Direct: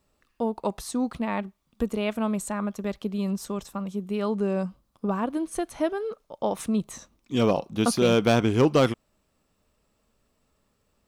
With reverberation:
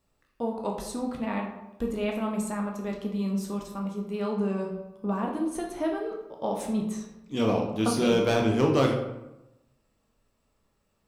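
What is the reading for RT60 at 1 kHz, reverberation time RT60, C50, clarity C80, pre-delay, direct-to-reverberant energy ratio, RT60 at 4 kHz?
0.90 s, 0.95 s, 5.0 dB, 8.0 dB, 13 ms, 0.0 dB, 0.55 s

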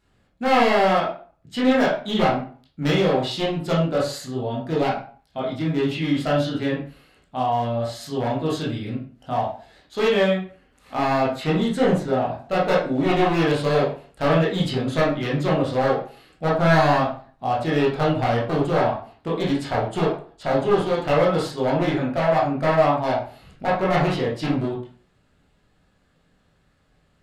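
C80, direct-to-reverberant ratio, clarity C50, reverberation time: 10.5 dB, -6.5 dB, 5.0 dB, 0.40 s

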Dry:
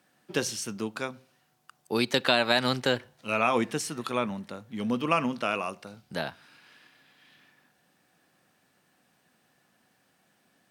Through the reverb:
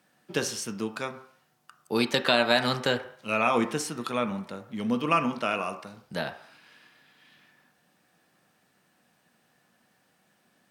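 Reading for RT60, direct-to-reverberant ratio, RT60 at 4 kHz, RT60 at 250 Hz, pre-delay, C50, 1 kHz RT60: 0.60 s, 7.0 dB, 0.65 s, 0.45 s, 3 ms, 12.0 dB, 0.60 s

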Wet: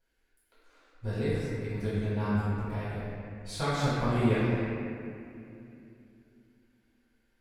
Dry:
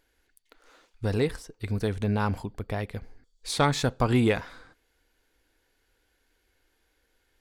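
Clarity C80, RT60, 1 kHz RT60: -2.0 dB, 2.6 s, 2.4 s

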